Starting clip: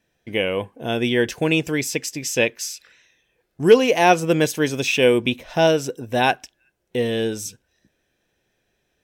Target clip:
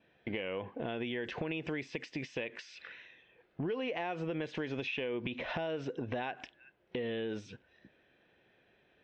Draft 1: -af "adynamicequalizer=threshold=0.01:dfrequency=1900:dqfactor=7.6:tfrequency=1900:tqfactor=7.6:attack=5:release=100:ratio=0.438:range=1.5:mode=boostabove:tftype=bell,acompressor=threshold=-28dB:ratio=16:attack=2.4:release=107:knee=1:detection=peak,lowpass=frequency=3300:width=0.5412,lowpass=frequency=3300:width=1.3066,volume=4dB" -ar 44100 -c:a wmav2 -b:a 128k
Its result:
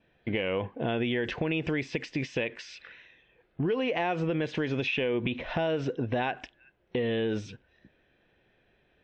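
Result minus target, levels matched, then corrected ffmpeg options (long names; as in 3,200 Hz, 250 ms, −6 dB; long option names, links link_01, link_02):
downward compressor: peak gain reduction −7.5 dB; 125 Hz band +2.0 dB
-af "adynamicequalizer=threshold=0.01:dfrequency=1900:dqfactor=7.6:tfrequency=1900:tqfactor=7.6:attack=5:release=100:ratio=0.438:range=1.5:mode=boostabove:tftype=bell,highpass=frequency=160:poles=1,acompressor=threshold=-36dB:ratio=16:attack=2.4:release=107:knee=1:detection=peak,lowpass=frequency=3300:width=0.5412,lowpass=frequency=3300:width=1.3066,volume=4dB" -ar 44100 -c:a wmav2 -b:a 128k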